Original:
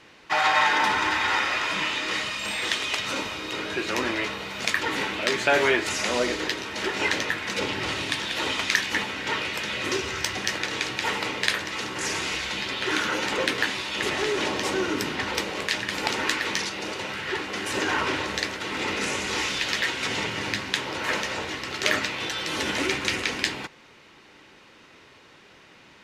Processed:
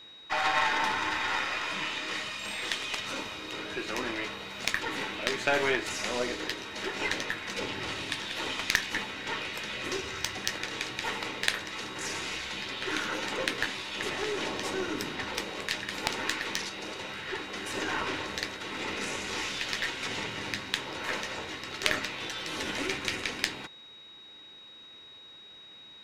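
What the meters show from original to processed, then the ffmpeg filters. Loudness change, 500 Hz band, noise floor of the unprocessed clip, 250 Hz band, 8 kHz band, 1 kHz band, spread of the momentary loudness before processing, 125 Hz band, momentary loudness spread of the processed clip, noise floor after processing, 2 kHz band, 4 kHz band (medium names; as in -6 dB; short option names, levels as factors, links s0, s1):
-6.0 dB, -6.5 dB, -52 dBFS, -6.5 dB, -6.0 dB, -6.5 dB, 6 LU, -6.5 dB, 9 LU, -50 dBFS, -6.5 dB, -5.5 dB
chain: -af "aeval=exprs='val(0)+0.00891*sin(2*PI*3800*n/s)':c=same,aeval=exprs='0.708*(cos(1*acos(clip(val(0)/0.708,-1,1)))-cos(1*PI/2))+0.158*(cos(3*acos(clip(val(0)/0.708,-1,1)))-cos(3*PI/2))+0.00562*(cos(4*acos(clip(val(0)/0.708,-1,1)))-cos(4*PI/2))+0.01*(cos(5*acos(clip(val(0)/0.708,-1,1)))-cos(5*PI/2))+0.01*(cos(8*acos(clip(val(0)/0.708,-1,1)))-cos(8*PI/2))':c=same,volume=1.12"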